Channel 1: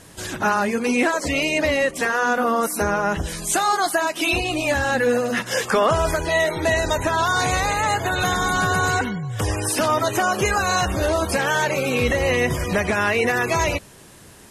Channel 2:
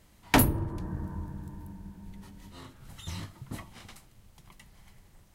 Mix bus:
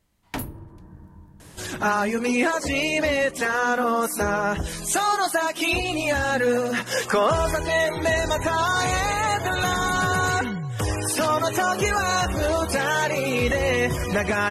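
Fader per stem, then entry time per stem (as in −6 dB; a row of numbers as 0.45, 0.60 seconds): −2.0, −9.5 decibels; 1.40, 0.00 seconds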